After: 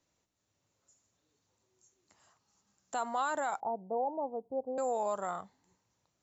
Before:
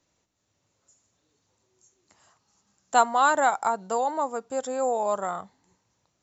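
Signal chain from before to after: 3.6–4.78 steep low-pass 850 Hz 48 dB/oct; limiter -18 dBFS, peak gain reduction 11 dB; gain -6 dB

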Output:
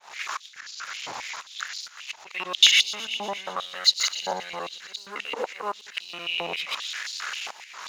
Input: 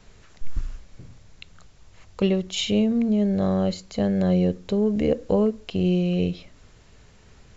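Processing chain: local time reversal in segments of 90 ms; compressor 3:1, threshold -33 dBFS, peak gain reduction 12.5 dB; sample leveller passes 2; auto swell 0.31 s; thin delay 0.115 s, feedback 76%, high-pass 2500 Hz, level -15 dB; speed mistake 25 fps video run at 24 fps; maximiser +27.5 dB; stepped high-pass 7.5 Hz 860–4400 Hz; gain -12.5 dB

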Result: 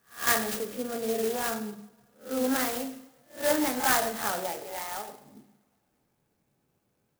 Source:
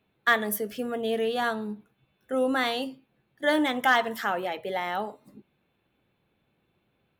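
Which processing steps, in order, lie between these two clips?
spectral swells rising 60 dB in 0.32 s; 4.63–5.09 HPF 980 Hz 6 dB/oct; two-slope reverb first 0.66 s, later 2.7 s, from -25 dB, DRR 6 dB; flange 1.8 Hz, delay 4.5 ms, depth 8.5 ms, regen -62%; clock jitter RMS 0.091 ms

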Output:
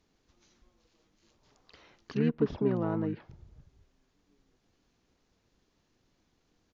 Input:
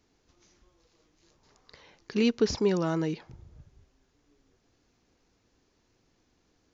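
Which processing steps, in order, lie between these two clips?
harmoniser -7 st -3 dB; treble ducked by the level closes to 1500 Hz, closed at -23.5 dBFS; gain -4.5 dB

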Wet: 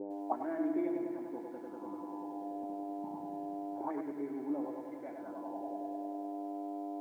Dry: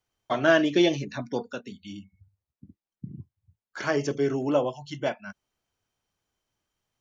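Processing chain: bell 110 Hz -9.5 dB 0.93 oct; notch 870 Hz, Q 14; in parallel at 0 dB: limiter -19.5 dBFS, peak gain reduction 11.5 dB; on the sum: buzz 100 Hz, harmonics 19, -37 dBFS -3 dB/oct; requantised 6-bit, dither none; vocal tract filter u; on a send: darkening echo 97 ms, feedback 77%, low-pass 3400 Hz, level -5.5 dB; on the sum: auto-wah 400–1900 Hz, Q 4.4, up, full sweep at -30 dBFS; lo-fi delay 0.103 s, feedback 35%, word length 13-bit, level -9 dB; gain +15.5 dB

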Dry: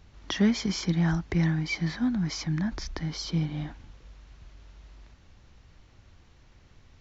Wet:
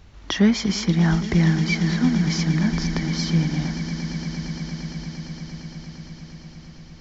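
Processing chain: swelling echo 0.115 s, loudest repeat 8, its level -16.5 dB; gain +6 dB

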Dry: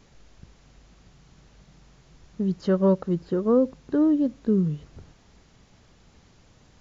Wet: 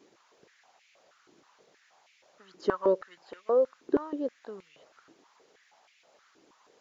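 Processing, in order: harmonic-percussive split harmonic -5 dB; stepped high-pass 6.3 Hz 340–2300 Hz; gain -3.5 dB

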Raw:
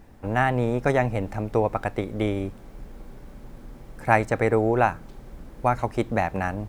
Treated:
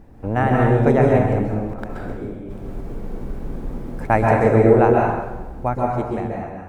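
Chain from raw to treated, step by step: ending faded out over 1.39 s; tilt shelf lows +5.5 dB, about 1300 Hz; 1.52–4.1 negative-ratio compressor -32 dBFS, ratio -1; plate-style reverb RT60 1.1 s, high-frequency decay 0.85×, pre-delay 0.115 s, DRR -2 dB; gain -1 dB

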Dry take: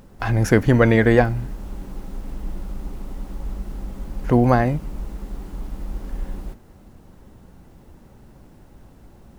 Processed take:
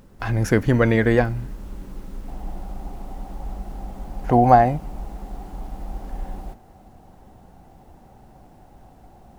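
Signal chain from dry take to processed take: bell 750 Hz -2 dB 0.42 oct, from 2.28 s +14 dB; gain -2.5 dB

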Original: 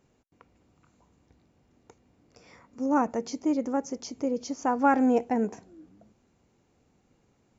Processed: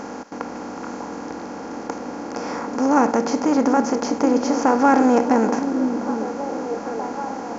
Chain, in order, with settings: per-bin compression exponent 0.4; delay with a stepping band-pass 0.78 s, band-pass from 300 Hz, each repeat 0.7 oct, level -5 dB; gain +4 dB

